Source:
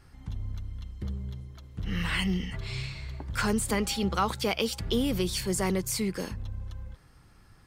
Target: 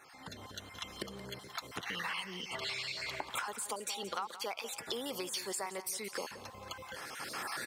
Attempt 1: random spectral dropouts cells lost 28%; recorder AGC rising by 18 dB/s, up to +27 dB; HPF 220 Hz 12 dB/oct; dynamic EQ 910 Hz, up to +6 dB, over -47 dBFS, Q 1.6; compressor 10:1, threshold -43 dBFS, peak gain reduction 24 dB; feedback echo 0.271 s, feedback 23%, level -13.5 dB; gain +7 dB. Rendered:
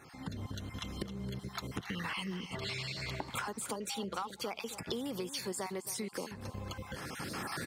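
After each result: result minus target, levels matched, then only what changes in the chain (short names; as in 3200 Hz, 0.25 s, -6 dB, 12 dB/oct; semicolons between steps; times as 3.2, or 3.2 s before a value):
echo 95 ms late; 250 Hz band +8.0 dB
change: feedback echo 0.176 s, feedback 23%, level -13.5 dB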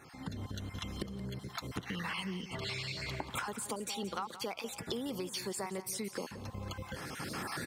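250 Hz band +7.5 dB
change: HPF 560 Hz 12 dB/oct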